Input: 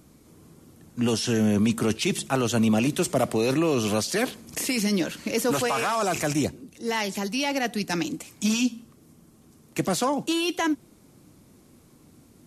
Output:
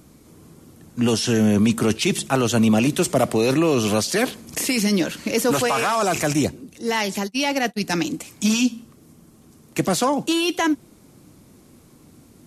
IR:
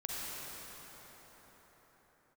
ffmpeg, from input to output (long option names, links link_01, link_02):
-filter_complex "[0:a]asplit=3[link_01][link_02][link_03];[link_01]afade=type=out:start_time=7.23:duration=0.02[link_04];[link_02]agate=range=-31dB:threshold=-27dB:ratio=16:detection=peak,afade=type=in:start_time=7.23:duration=0.02,afade=type=out:start_time=7.83:duration=0.02[link_05];[link_03]afade=type=in:start_time=7.83:duration=0.02[link_06];[link_04][link_05][link_06]amix=inputs=3:normalize=0,volume=4.5dB"